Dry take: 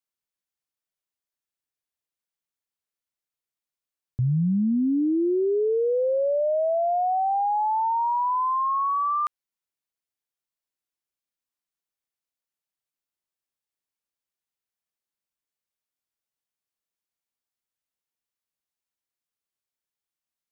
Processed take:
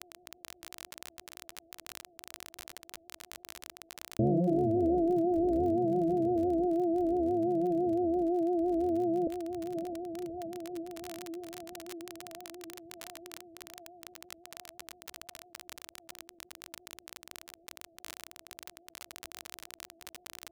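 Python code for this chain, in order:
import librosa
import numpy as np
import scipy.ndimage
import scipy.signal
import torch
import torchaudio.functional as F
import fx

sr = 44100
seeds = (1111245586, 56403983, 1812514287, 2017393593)

p1 = np.r_[np.sort(x[:len(x) // 128 * 128].reshape(-1, 128), axis=1).ravel(), x[len(x) // 128 * 128:]]
p2 = p1 + fx.echo_diffused(p1, sr, ms=592, feedback_pct=49, wet_db=-11.5, dry=0)
p3 = fx.dereverb_blind(p2, sr, rt60_s=1.6)
p4 = scipy.signal.sosfilt(scipy.signal.butter(16, 700.0, 'lowpass', fs=sr, output='sos'), p3)
p5 = fx.dmg_crackle(p4, sr, seeds[0], per_s=32.0, level_db=-42.0)
p6 = fx.low_shelf(p5, sr, hz=180.0, db=-9.0)
p7 = fx.vibrato(p6, sr, rate_hz=5.9, depth_cents=85.0)
p8 = fx.peak_eq(p7, sr, hz=76.0, db=4.5, octaves=0.77)
y = fx.env_flatten(p8, sr, amount_pct=50)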